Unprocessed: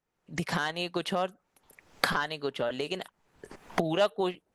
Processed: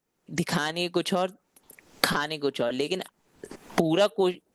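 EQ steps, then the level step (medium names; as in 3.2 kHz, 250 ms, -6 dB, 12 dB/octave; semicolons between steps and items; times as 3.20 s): peaking EQ 280 Hz +8.5 dB 2 oct; treble shelf 3.5 kHz +10.5 dB; -1.0 dB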